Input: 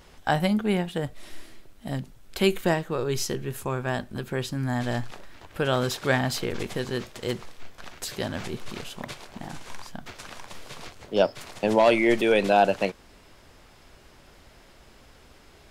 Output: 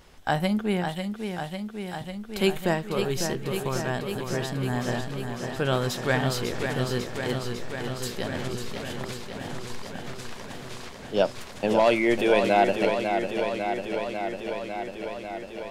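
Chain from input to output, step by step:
0:00.93–0:02.01: Butterworth high-pass 2,100 Hz
feedback echo with a swinging delay time 548 ms, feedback 76%, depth 62 cents, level −6.5 dB
level −1.5 dB

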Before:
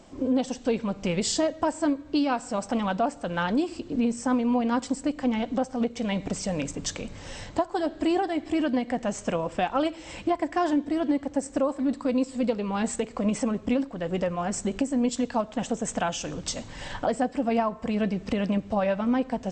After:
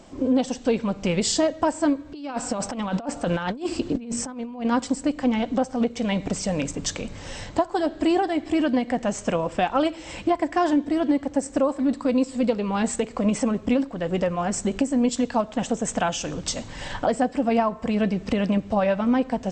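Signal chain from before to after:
0:02.12–0:04.65: compressor whose output falls as the input rises −30 dBFS, ratio −0.5
level +3.5 dB

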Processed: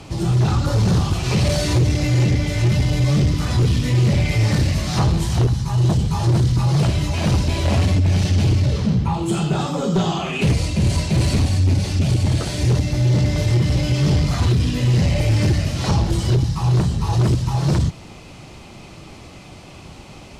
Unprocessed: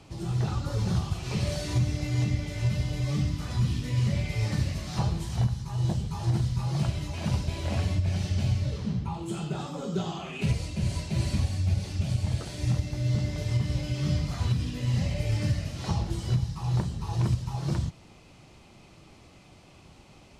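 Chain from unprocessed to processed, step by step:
sine wavefolder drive 5 dB, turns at −16.5 dBFS
level +4.5 dB
AAC 192 kbit/s 48,000 Hz

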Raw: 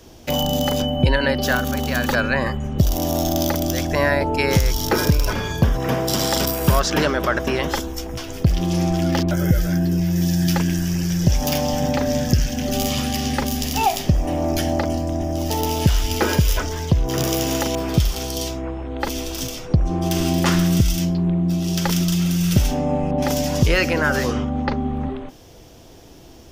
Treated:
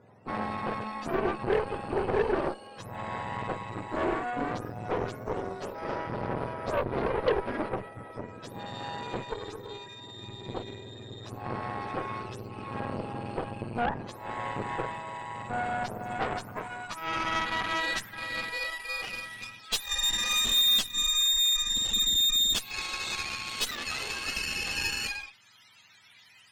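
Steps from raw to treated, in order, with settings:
frequency axis turned over on the octave scale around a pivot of 800 Hz
speech leveller within 4 dB 2 s
soft clipping −14 dBFS, distortion −16 dB
band-pass filter sweep 510 Hz → 3,300 Hz, 0:15.43–0:19.21
harmonic generator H 8 −15 dB, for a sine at −14.5 dBFS

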